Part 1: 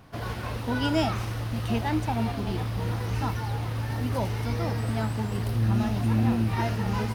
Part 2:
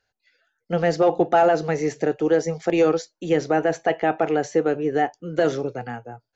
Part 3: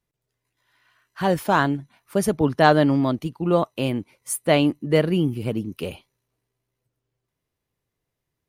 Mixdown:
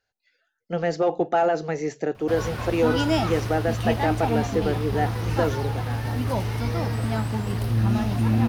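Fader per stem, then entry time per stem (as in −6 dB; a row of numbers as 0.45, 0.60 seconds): +2.5 dB, −4.0 dB, muted; 2.15 s, 0.00 s, muted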